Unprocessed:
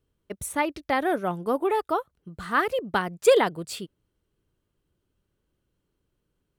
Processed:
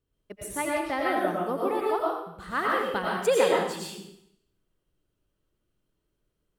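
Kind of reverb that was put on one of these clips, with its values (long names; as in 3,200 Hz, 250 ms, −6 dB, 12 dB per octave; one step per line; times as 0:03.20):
comb and all-pass reverb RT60 0.74 s, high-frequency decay 1×, pre-delay 65 ms, DRR −4 dB
level −6.5 dB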